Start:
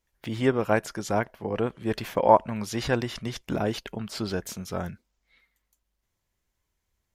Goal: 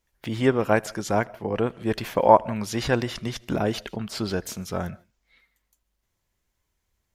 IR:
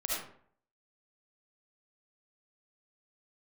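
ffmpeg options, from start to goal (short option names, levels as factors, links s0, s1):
-filter_complex "[0:a]asplit=2[s0][s1];[1:a]atrim=start_sample=2205,atrim=end_sample=4410,adelay=78[s2];[s1][s2]afir=irnorm=-1:irlink=0,volume=0.0473[s3];[s0][s3]amix=inputs=2:normalize=0,volume=1.33"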